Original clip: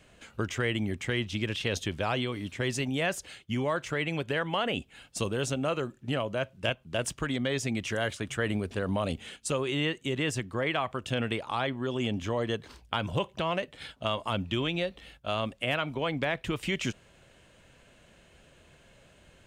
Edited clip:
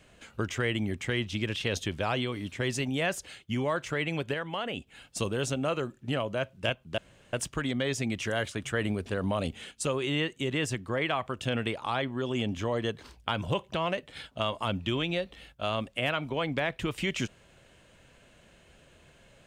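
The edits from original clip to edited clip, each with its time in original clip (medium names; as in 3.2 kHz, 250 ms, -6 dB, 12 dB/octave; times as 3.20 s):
4.34–4.87 s: gain -4.5 dB
6.98 s: insert room tone 0.35 s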